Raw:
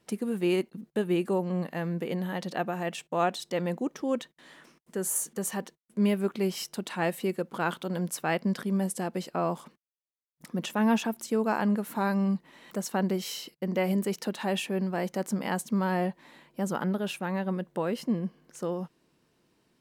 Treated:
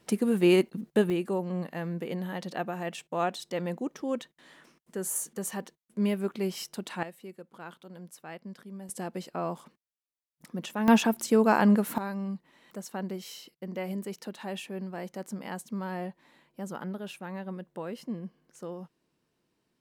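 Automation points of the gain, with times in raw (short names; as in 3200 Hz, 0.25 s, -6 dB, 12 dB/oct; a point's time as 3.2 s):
+5 dB
from 1.1 s -2.5 dB
from 7.03 s -15 dB
from 8.89 s -4 dB
from 10.88 s +5 dB
from 11.98 s -7.5 dB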